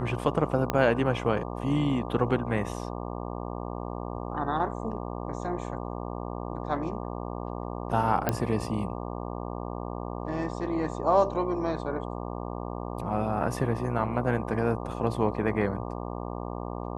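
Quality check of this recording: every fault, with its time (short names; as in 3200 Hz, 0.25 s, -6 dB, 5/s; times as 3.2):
buzz 60 Hz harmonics 20 -35 dBFS
0.7 pop -11 dBFS
8.29 pop -10 dBFS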